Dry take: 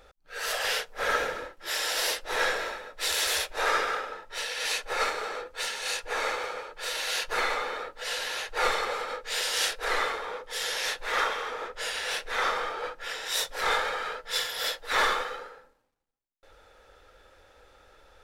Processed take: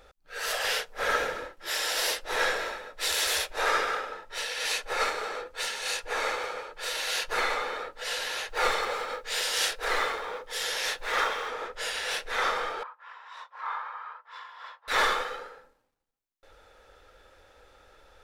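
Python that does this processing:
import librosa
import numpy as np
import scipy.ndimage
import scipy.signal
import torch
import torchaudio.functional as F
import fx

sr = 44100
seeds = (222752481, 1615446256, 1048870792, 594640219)

y = fx.block_float(x, sr, bits=7, at=(8.48, 11.52))
y = fx.ladder_bandpass(y, sr, hz=1100.0, resonance_pct=80, at=(12.83, 14.88))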